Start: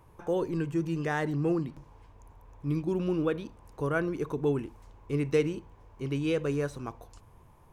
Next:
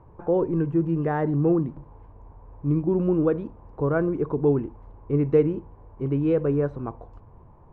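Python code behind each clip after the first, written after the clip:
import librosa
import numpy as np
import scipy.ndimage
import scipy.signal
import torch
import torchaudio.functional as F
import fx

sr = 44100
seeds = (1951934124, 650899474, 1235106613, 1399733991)

y = scipy.signal.sosfilt(scipy.signal.butter(2, 1000.0, 'lowpass', fs=sr, output='sos'), x)
y = y * librosa.db_to_amplitude(7.0)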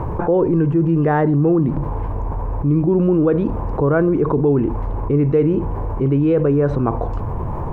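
y = fx.env_flatten(x, sr, amount_pct=70)
y = y * librosa.db_to_amplitude(2.0)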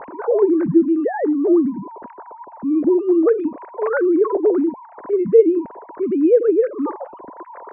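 y = fx.sine_speech(x, sr)
y = scipy.signal.sosfilt(scipy.signal.butter(2, 2000.0, 'lowpass', fs=sr, output='sos'), y)
y = fx.notch(y, sr, hz=790.0, q=17.0)
y = y * librosa.db_to_amplitude(-1.0)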